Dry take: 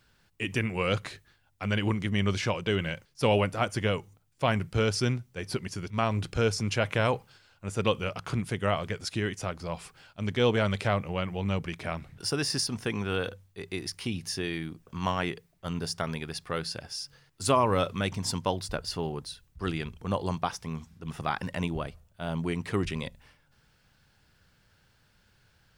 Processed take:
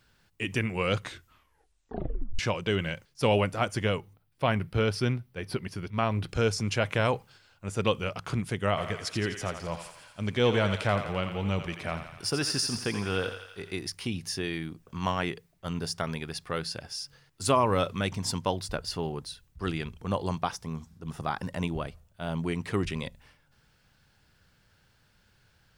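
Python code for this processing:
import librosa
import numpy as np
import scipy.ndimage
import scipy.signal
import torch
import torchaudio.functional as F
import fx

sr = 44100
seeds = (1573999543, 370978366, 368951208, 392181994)

y = fx.peak_eq(x, sr, hz=7000.0, db=-12.5, octaves=0.68, at=(3.97, 6.29))
y = fx.echo_thinned(y, sr, ms=85, feedback_pct=67, hz=560.0, wet_db=-8, at=(8.76, 13.76), fade=0.02)
y = fx.peak_eq(y, sr, hz=2400.0, db=-6.0, octaves=1.2, at=(20.56, 21.63))
y = fx.edit(y, sr, fx.tape_stop(start_s=0.99, length_s=1.4), tone=tone)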